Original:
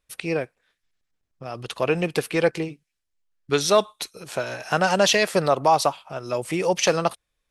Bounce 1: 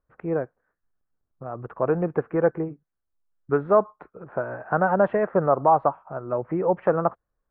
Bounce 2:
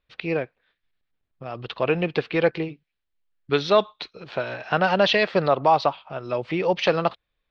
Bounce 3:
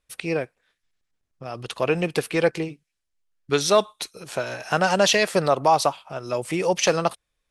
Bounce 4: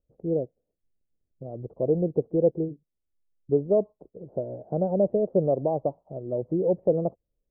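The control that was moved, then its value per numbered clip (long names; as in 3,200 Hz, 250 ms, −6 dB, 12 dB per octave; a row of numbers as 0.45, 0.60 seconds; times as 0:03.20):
Butterworth low-pass, frequency: 1,500, 4,200, 12,000, 600 Hertz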